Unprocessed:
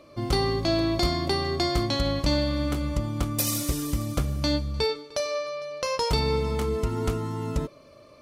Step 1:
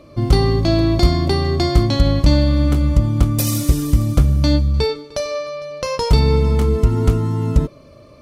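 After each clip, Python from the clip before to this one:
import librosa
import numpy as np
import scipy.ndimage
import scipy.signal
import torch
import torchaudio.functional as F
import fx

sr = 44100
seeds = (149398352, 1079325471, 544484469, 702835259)

y = fx.low_shelf(x, sr, hz=270.0, db=11.5)
y = y * librosa.db_to_amplitude(3.5)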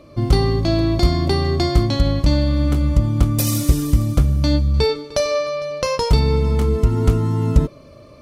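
y = fx.rider(x, sr, range_db=5, speed_s=0.5)
y = y * librosa.db_to_amplitude(-1.0)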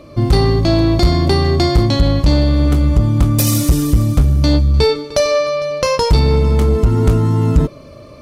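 y = 10.0 ** (-10.0 / 20.0) * np.tanh(x / 10.0 ** (-10.0 / 20.0))
y = y * librosa.db_to_amplitude(6.0)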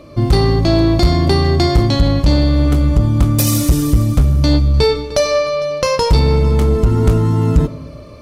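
y = fx.rev_freeverb(x, sr, rt60_s=1.5, hf_ratio=0.55, predelay_ms=25, drr_db=15.0)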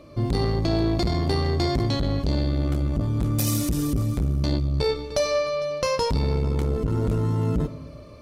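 y = fx.transformer_sat(x, sr, knee_hz=180.0)
y = y * librosa.db_to_amplitude(-8.0)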